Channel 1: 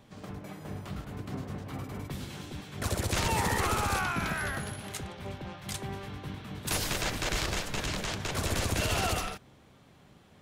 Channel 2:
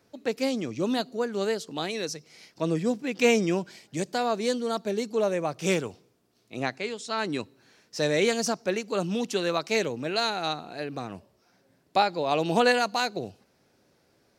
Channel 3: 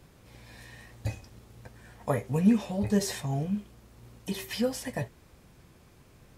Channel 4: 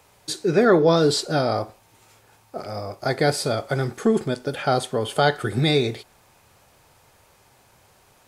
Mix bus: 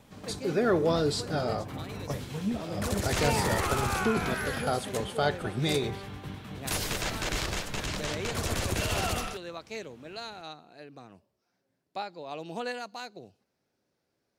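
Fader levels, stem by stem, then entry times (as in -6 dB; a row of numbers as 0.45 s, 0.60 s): -0.5 dB, -13.5 dB, -9.5 dB, -9.0 dB; 0.00 s, 0.00 s, 0.00 s, 0.00 s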